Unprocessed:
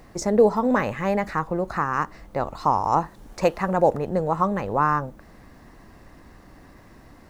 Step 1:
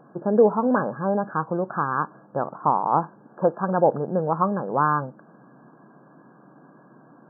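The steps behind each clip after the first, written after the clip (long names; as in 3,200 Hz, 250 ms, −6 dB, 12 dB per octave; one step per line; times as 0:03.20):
brick-wall band-pass 120–1,700 Hz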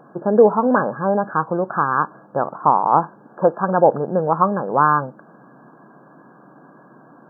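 low-shelf EQ 350 Hz −5 dB
level +6.5 dB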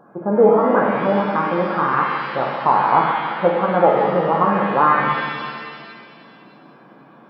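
reverb with rising layers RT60 1.9 s, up +7 semitones, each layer −8 dB, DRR −1 dB
level −3 dB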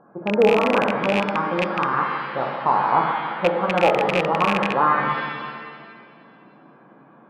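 loose part that buzzes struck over −23 dBFS, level −7 dBFS
low-pass that shuts in the quiet parts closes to 2,100 Hz, open at −10.5 dBFS
level −3.5 dB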